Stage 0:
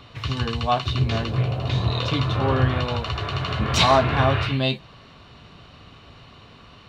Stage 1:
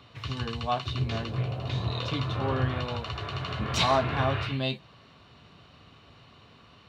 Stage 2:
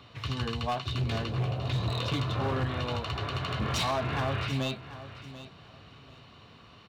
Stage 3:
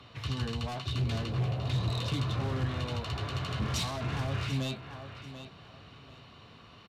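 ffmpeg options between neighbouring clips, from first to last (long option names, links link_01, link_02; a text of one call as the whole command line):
ffmpeg -i in.wav -af "highpass=68,volume=-7dB" out.wav
ffmpeg -i in.wav -af "alimiter=limit=-19dB:level=0:latency=1:release=280,volume=26dB,asoftclip=hard,volume=-26dB,aecho=1:1:739|1478:0.188|0.0414,volume=1dB" out.wav
ffmpeg -i in.wav -filter_complex "[0:a]acrossover=split=260|3900[link_01][link_02][link_03];[link_02]asoftclip=type=tanh:threshold=-37dB[link_04];[link_01][link_04][link_03]amix=inputs=3:normalize=0,aresample=32000,aresample=44100" out.wav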